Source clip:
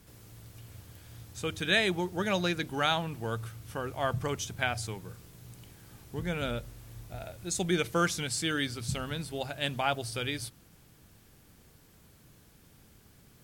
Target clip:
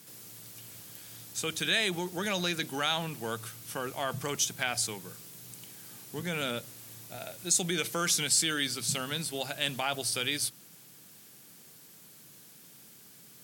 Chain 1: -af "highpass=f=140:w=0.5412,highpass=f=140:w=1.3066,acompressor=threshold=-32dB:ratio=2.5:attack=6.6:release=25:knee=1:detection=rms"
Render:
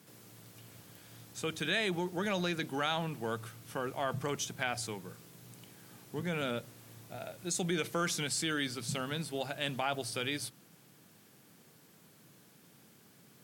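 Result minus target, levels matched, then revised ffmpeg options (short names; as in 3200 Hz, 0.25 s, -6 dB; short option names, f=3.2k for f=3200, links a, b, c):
8000 Hz band -5.0 dB
-af "highpass=f=140:w=0.5412,highpass=f=140:w=1.3066,acompressor=threshold=-32dB:ratio=2.5:attack=6.6:release=25:knee=1:detection=rms,highshelf=f=2.9k:g=11.5"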